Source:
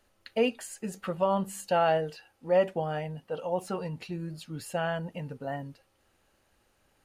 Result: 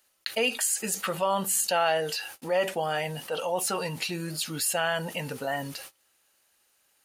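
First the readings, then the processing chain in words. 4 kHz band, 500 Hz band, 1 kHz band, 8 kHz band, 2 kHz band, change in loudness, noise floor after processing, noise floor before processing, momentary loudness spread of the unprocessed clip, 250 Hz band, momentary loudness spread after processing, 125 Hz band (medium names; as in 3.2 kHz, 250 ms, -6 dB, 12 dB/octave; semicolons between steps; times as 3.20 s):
+11.5 dB, -0.5 dB, +2.0 dB, +17.0 dB, +7.5 dB, +3.0 dB, -69 dBFS, -70 dBFS, 13 LU, -1.5 dB, 9 LU, -1.5 dB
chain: gate -60 dBFS, range -44 dB; tilt EQ +4 dB/octave; level flattener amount 50%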